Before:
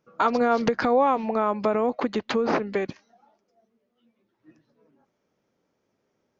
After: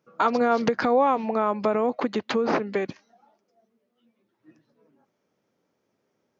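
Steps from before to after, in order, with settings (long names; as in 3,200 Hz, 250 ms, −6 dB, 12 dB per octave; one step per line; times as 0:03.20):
high-pass filter 94 Hz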